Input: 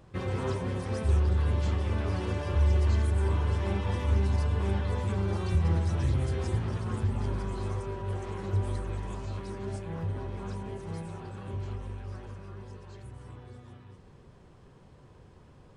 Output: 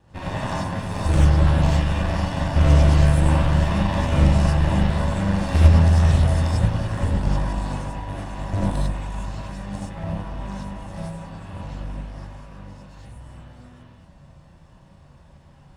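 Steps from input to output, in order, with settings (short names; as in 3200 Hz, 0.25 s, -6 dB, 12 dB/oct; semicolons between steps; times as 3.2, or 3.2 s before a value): minimum comb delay 1.1 ms; added harmonics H 3 -13 dB, 4 -16 dB, 5 -19 dB, 7 -23 dB, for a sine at -15 dBFS; non-linear reverb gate 0.12 s rising, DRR -6 dB; gain +6 dB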